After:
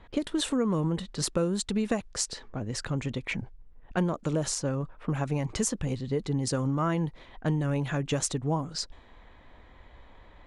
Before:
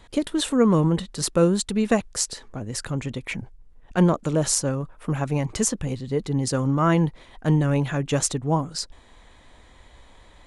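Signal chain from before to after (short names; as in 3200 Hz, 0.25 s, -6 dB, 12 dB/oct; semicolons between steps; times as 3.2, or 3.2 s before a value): compressor 4:1, threshold -23 dBFS, peak gain reduction 9 dB; 4.49–5.15 high shelf 10000 Hz -9.5 dB; low-pass opened by the level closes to 2300 Hz, open at -21.5 dBFS; gain -1.5 dB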